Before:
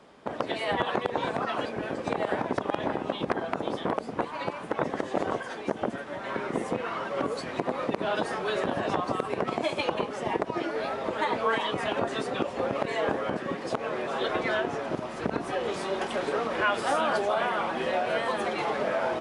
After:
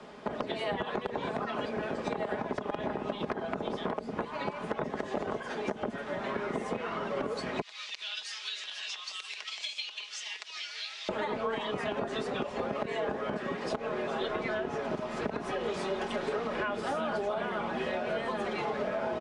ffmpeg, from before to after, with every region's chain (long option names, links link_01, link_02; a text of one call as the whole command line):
ffmpeg -i in.wav -filter_complex "[0:a]asettb=1/sr,asplit=3[link_01][link_02][link_03];[link_01]atrim=end=7.614[link_04];[link_02]atrim=start=7.61:end=11.09,asetpts=PTS-STARTPTS,afade=type=in:duration=0.004:curve=qsin,afade=type=out:start_time=3.476:duration=0.004:curve=qsin,asuperpass=centerf=4100:order=4:qfactor=1.1,aemphasis=mode=production:type=75fm[link_05];[link_03]atrim=start=11.086[link_06];[link_04][link_05]acrossfade=duration=0.004:curve1=hsin:curve2=qsin[link_07];[link_07][link_06]acrossfade=duration=0.004:curve1=qsin:curve2=hsin,lowpass=7900,aecho=1:1:4.8:0.41,acrossover=split=92|460[link_08][link_09][link_10];[link_08]acompressor=threshold=-57dB:ratio=4[link_11];[link_09]acompressor=threshold=-42dB:ratio=4[link_12];[link_10]acompressor=threshold=-41dB:ratio=4[link_13];[link_11][link_12][link_13]amix=inputs=3:normalize=0,volume=5dB" out.wav